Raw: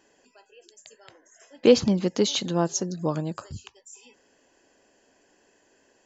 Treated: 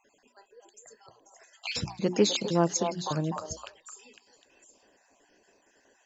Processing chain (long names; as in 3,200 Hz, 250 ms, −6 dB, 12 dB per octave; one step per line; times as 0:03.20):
time-frequency cells dropped at random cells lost 39%
mains-hum notches 60/120/180/240/300/360 Hz
echo through a band-pass that steps 253 ms, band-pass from 750 Hz, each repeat 1.4 octaves, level −3 dB